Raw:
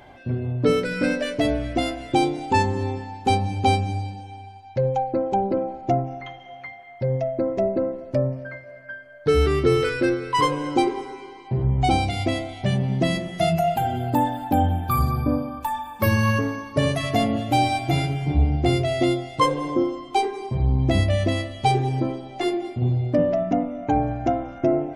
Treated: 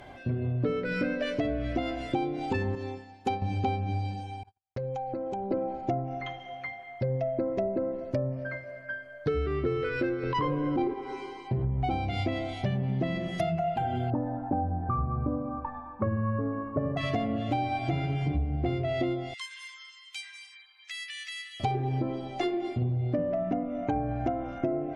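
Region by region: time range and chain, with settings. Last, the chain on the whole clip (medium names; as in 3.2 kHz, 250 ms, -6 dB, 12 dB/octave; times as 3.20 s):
2.75–3.42 s: bass shelf 160 Hz -9.5 dB + band-stop 7.8 kHz, Q 14 + upward expansion, over -38 dBFS
4.43–5.51 s: gate -38 dBFS, range -52 dB + compression, threshold -31 dBFS
10.23–10.94 s: low-pass 6 kHz 24 dB/octave + bass shelf 440 Hz +10 dB + transient shaper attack -10 dB, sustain +2 dB
14.10–16.97 s: low-pass 1.3 kHz 24 dB/octave + doubling 18 ms -13 dB
19.34–21.60 s: steep high-pass 1.7 kHz + compression 3:1, threshold -37 dBFS
whole clip: band-stop 880 Hz, Q 13; low-pass that closes with the level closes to 2.4 kHz, closed at -18 dBFS; compression, threshold -26 dBFS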